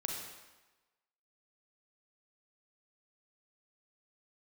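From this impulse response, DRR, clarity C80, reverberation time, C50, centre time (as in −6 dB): 0.0 dB, 4.0 dB, 1.1 s, 1.5 dB, 60 ms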